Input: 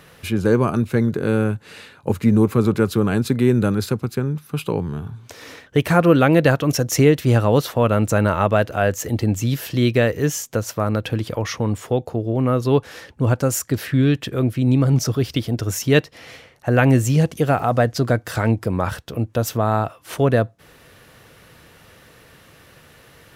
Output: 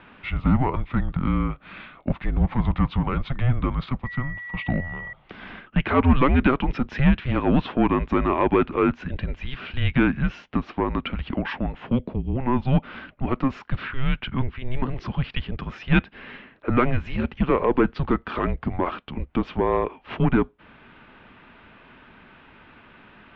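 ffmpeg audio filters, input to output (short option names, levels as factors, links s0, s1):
-filter_complex "[0:a]asettb=1/sr,asplit=3[s0][s1][s2];[s0]atrim=end=4.054[s3];[s1]atrim=start=4.05:end=5.13,asetpts=PTS-STARTPTS,afade=t=in:d=0.004:c=qsin,afade=t=out:st=1.076:d=0.004:c=qsin,aeval=exprs='val(0)+0.02*sin(2*PI*2200*n/s)':c=same[s4];[s2]atrim=start=5.126[s5];[s3][s4]acrossfade=d=0.004:c1=hsin:c2=qsin[s6];[s6][s5]acrossfade=d=0.004:c1=qsin:c2=hsin,acontrast=78,highpass=f=260:t=q:w=0.5412,highpass=f=260:t=q:w=1.307,lowpass=f=3400:t=q:w=0.5176,lowpass=f=3400:t=q:w=0.7071,lowpass=f=3400:t=q:w=1.932,afreqshift=-260,volume=0.501"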